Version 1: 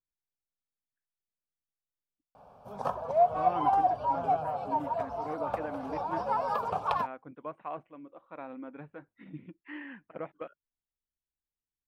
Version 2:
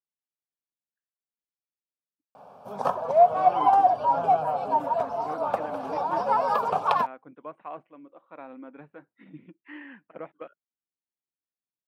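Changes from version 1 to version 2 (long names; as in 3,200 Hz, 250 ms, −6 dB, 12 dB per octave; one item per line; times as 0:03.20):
background +6.5 dB
master: add high-pass filter 170 Hz 12 dB per octave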